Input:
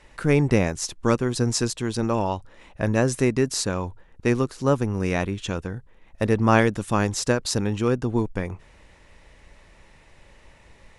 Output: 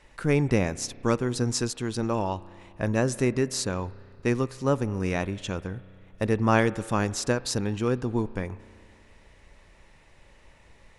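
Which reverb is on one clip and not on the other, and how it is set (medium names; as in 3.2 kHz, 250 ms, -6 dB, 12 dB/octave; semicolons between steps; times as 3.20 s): spring tank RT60 2.4 s, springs 32 ms, chirp 25 ms, DRR 18 dB; trim -3.5 dB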